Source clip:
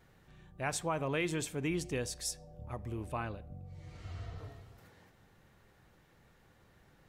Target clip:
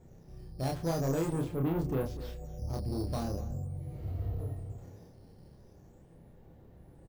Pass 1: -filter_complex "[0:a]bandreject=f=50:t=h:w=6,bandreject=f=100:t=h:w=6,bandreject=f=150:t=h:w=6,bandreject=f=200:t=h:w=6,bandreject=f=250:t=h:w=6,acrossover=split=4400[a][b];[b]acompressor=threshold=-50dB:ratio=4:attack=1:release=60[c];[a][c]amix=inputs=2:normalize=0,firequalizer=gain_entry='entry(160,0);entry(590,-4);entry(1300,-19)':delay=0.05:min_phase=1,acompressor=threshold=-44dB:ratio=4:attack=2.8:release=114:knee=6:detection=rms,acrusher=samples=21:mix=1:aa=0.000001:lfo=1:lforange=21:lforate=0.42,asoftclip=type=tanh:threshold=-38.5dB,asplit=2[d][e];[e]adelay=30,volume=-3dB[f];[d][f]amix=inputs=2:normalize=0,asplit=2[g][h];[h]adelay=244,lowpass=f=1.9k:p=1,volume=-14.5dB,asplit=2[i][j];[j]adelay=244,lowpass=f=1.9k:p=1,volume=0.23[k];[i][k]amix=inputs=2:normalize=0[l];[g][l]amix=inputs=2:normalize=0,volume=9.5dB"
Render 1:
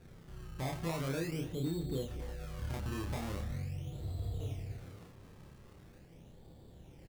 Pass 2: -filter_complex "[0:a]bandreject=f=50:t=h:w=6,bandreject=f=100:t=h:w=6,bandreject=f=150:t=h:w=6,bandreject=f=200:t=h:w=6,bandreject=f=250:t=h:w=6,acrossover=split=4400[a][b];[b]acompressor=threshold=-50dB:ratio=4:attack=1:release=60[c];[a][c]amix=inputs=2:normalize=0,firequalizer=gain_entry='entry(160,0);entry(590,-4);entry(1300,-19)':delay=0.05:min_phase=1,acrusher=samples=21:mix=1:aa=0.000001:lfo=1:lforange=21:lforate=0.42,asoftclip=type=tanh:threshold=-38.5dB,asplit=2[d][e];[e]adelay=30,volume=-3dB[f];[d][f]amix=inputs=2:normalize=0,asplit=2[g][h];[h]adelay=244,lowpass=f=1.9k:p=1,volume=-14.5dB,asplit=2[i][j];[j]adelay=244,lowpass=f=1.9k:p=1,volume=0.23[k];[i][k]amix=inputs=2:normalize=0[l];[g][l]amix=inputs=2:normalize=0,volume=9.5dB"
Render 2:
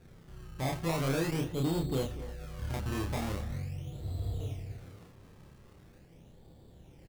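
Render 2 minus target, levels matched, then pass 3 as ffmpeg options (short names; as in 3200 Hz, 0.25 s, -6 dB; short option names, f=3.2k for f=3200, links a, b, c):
decimation with a swept rate: distortion +11 dB
-filter_complex "[0:a]bandreject=f=50:t=h:w=6,bandreject=f=100:t=h:w=6,bandreject=f=150:t=h:w=6,bandreject=f=200:t=h:w=6,bandreject=f=250:t=h:w=6,acrossover=split=4400[a][b];[b]acompressor=threshold=-50dB:ratio=4:attack=1:release=60[c];[a][c]amix=inputs=2:normalize=0,firequalizer=gain_entry='entry(160,0);entry(590,-4);entry(1300,-19)':delay=0.05:min_phase=1,acrusher=samples=6:mix=1:aa=0.000001:lfo=1:lforange=6:lforate=0.42,asoftclip=type=tanh:threshold=-38.5dB,asplit=2[d][e];[e]adelay=30,volume=-3dB[f];[d][f]amix=inputs=2:normalize=0,asplit=2[g][h];[h]adelay=244,lowpass=f=1.9k:p=1,volume=-14.5dB,asplit=2[i][j];[j]adelay=244,lowpass=f=1.9k:p=1,volume=0.23[k];[i][k]amix=inputs=2:normalize=0[l];[g][l]amix=inputs=2:normalize=0,volume=9.5dB"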